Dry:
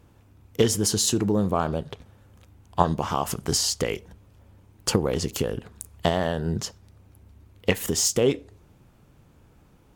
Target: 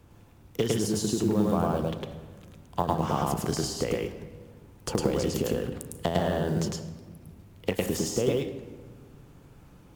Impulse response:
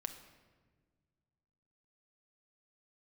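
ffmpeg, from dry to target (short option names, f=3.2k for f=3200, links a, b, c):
-filter_complex "[0:a]acrossover=split=170|930[a][b][c];[a]acompressor=threshold=-36dB:ratio=4[d];[b]acompressor=threshold=-26dB:ratio=4[e];[c]acompressor=threshold=-38dB:ratio=4[f];[d][e][f]amix=inputs=3:normalize=0,acrusher=bits=7:mode=log:mix=0:aa=0.000001,asplit=2[g][h];[1:a]atrim=start_sample=2205,adelay=105[i];[h][i]afir=irnorm=-1:irlink=0,volume=2dB[j];[g][j]amix=inputs=2:normalize=0"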